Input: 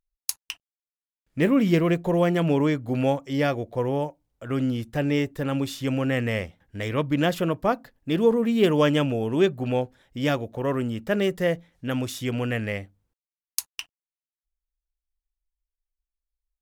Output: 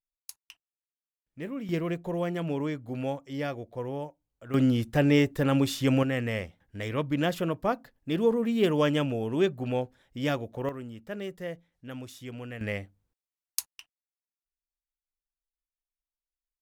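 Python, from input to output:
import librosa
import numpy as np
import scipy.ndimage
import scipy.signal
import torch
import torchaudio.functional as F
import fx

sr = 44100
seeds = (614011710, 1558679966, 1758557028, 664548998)

y = fx.gain(x, sr, db=fx.steps((0.0, -16.0), (1.69, -9.0), (4.54, 2.0), (6.03, -4.5), (10.69, -13.0), (12.61, -3.0), (13.66, -14.0)))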